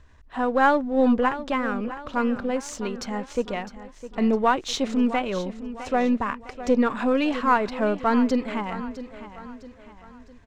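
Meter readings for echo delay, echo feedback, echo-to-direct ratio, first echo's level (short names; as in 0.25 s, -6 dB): 0.657 s, 43%, -12.5 dB, -13.5 dB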